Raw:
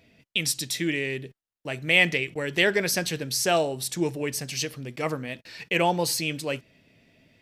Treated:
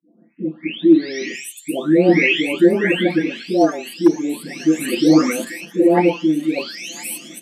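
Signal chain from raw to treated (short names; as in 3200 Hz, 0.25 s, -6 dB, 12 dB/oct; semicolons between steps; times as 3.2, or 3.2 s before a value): spectral delay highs late, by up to 0.98 s; thin delay 1.015 s, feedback 43%, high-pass 3300 Hz, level -9 dB; in parallel at -2 dB: level quantiser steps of 21 dB; on the sum: bell 320 Hz +11 dB 1.2 oct; on a send at -10 dB: reverb RT60 0.15 s, pre-delay 3 ms; on the sum: hard clip 0 dBFS, distortion -30 dB; steep high-pass 190 Hz 36 dB/oct; tone controls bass -6 dB, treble -9 dB; AGC gain up to 16 dB; gain -1.5 dB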